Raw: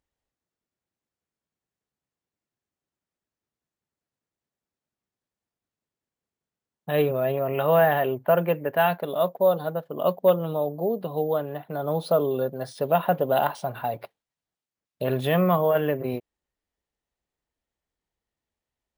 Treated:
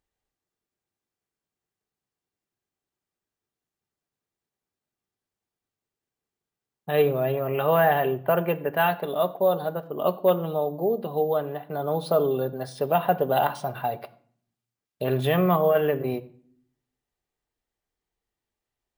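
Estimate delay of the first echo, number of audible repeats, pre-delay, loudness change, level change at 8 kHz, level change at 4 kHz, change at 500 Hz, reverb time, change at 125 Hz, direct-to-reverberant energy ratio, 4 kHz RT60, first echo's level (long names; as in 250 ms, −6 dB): no echo audible, no echo audible, 3 ms, 0.0 dB, can't be measured, +0.5 dB, −0.5 dB, 0.55 s, 0.0 dB, 8.0 dB, 0.45 s, no echo audible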